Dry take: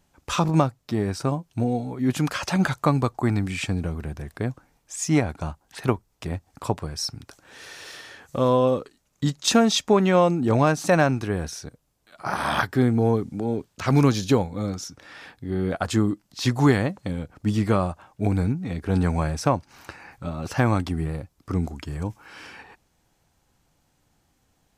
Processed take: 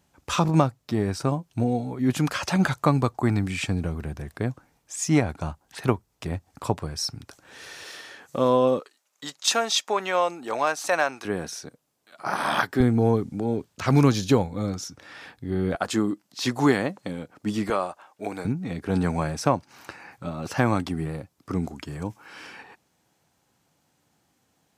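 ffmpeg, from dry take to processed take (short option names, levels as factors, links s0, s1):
-af "asetnsamples=n=441:p=0,asendcmd='7.83 highpass f 170;8.8 highpass f 670;11.25 highpass f 190;12.8 highpass f 59;15.75 highpass f 210;17.7 highpass f 450;18.45 highpass f 130',highpass=56"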